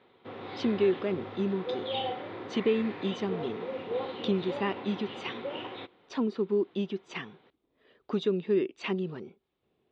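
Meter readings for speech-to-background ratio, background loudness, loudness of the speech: 6.5 dB, -38.0 LUFS, -31.5 LUFS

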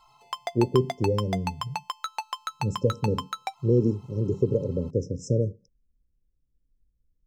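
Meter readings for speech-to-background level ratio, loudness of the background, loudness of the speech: 8.0 dB, -35.0 LUFS, -27.0 LUFS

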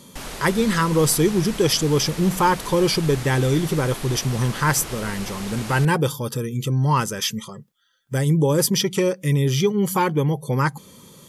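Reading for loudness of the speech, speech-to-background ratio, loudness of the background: -21.0 LUFS, 12.5 dB, -33.5 LUFS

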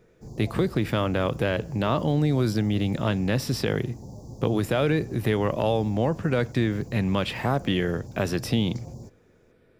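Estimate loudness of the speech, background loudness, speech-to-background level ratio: -25.5 LUFS, -42.0 LUFS, 16.5 dB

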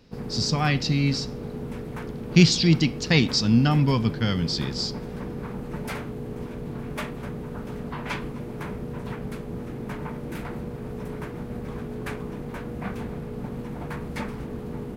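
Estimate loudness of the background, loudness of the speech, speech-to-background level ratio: -34.5 LUFS, -22.5 LUFS, 12.0 dB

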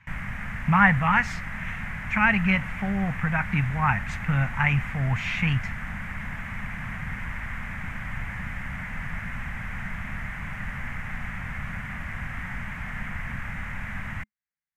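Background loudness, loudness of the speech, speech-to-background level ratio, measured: -34.5 LUFS, -24.0 LUFS, 10.5 dB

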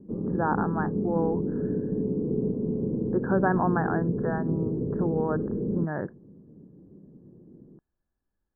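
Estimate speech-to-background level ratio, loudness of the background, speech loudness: -0.5 dB, -29.5 LUFS, -30.0 LUFS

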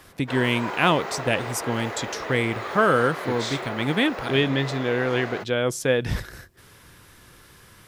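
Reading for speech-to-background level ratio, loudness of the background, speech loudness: 9.0 dB, -33.0 LUFS, -24.0 LUFS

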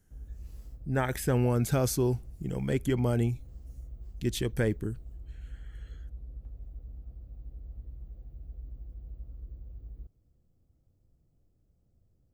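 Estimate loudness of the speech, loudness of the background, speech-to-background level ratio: -30.0 LUFS, -47.0 LUFS, 17.0 dB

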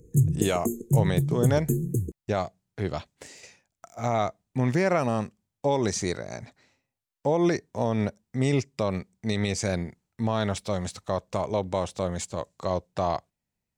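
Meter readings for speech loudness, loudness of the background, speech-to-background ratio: -28.5 LUFS, -27.0 LUFS, -1.5 dB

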